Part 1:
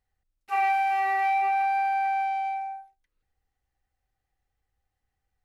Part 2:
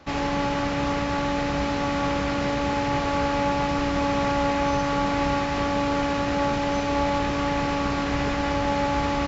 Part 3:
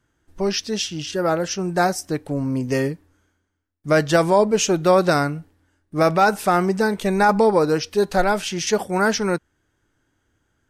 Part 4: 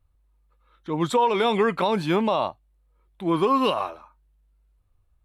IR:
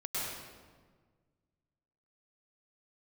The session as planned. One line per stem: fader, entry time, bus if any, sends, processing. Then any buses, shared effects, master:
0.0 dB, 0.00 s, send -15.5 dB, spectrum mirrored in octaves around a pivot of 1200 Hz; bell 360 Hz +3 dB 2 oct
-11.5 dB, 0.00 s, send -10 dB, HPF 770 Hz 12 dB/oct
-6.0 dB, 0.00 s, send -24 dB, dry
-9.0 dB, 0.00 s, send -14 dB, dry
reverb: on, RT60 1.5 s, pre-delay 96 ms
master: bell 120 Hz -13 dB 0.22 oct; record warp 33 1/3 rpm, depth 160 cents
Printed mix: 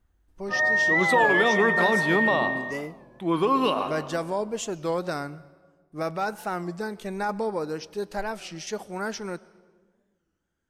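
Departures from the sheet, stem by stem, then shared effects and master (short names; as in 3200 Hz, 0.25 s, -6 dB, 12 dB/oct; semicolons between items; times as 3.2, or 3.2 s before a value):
stem 2: muted; stem 3 -6.0 dB -> -12.5 dB; stem 4 -9.0 dB -> -2.5 dB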